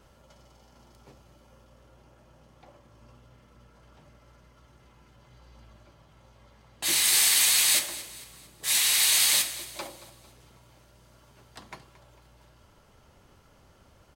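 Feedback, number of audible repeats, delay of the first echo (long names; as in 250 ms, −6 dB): 44%, 3, 225 ms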